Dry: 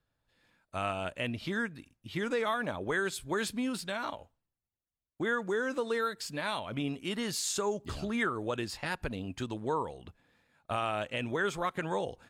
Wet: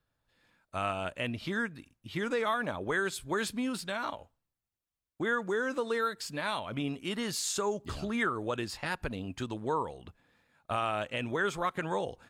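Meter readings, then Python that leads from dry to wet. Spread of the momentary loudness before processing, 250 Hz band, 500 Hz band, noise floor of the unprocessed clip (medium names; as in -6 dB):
7 LU, 0.0 dB, 0.0 dB, under -85 dBFS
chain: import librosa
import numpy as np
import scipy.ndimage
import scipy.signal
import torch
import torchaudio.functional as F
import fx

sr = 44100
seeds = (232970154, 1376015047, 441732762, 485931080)

y = fx.peak_eq(x, sr, hz=1200.0, db=2.0, octaves=0.77)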